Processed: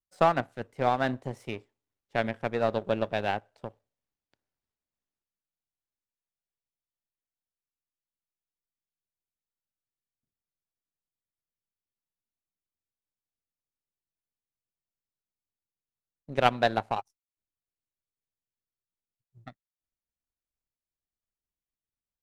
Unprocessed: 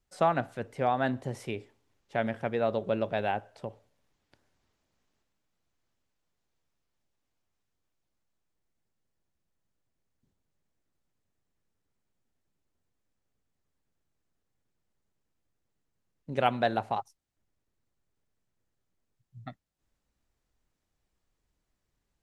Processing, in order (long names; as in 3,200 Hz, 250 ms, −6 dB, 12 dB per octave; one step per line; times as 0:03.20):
power curve on the samples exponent 1.4
level +6.5 dB